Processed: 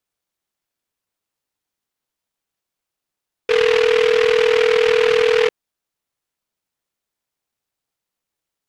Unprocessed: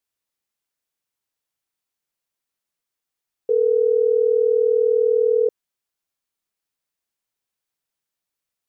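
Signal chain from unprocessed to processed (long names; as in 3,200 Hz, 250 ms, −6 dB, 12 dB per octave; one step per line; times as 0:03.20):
short delay modulated by noise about 1,900 Hz, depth 0.13 ms
level +2.5 dB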